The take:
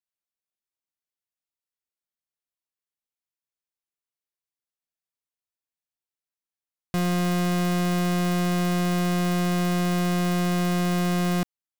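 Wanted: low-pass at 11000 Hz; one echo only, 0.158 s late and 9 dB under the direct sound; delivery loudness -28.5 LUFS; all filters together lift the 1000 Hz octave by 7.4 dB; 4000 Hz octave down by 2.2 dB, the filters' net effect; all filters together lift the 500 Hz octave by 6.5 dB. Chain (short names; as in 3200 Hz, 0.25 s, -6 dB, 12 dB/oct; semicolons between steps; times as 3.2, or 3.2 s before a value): LPF 11000 Hz; bell 500 Hz +7 dB; bell 1000 Hz +7.5 dB; bell 4000 Hz -3.5 dB; echo 0.158 s -9 dB; gain -9 dB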